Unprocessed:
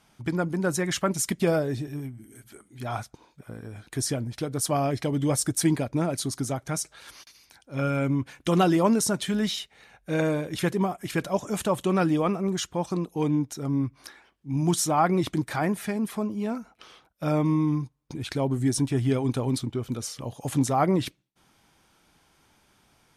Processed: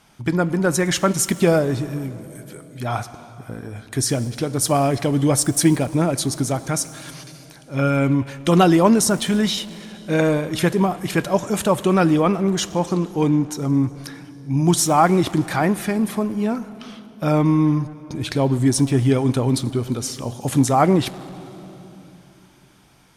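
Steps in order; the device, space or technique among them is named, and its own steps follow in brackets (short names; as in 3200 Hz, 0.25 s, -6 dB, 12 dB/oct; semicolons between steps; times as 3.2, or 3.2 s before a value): saturated reverb return (on a send at -11 dB: reverb RT60 2.6 s, pre-delay 17 ms + soft clip -28 dBFS, distortion -7 dB); on the sum: gain +7 dB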